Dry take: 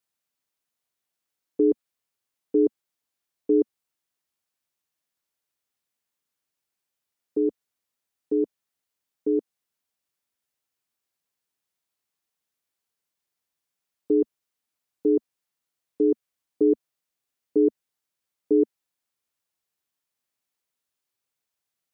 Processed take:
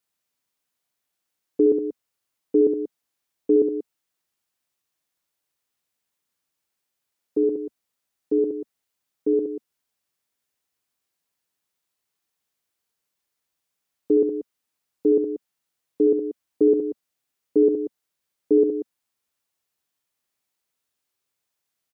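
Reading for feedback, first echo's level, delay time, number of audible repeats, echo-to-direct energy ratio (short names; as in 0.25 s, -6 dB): no steady repeat, -7.0 dB, 68 ms, 2, -5.5 dB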